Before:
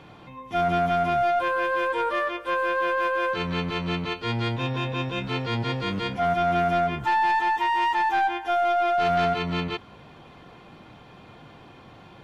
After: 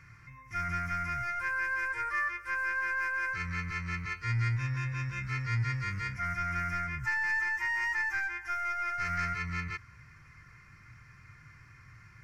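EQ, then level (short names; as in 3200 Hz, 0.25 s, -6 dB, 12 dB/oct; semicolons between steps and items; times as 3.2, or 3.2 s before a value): EQ curve 120 Hz 0 dB, 210 Hz -19 dB, 760 Hz -29 dB, 1200 Hz -6 dB, 2100 Hz +3 dB, 3400 Hz -27 dB, 5300 Hz +2 dB, 8600 Hz -3 dB; 0.0 dB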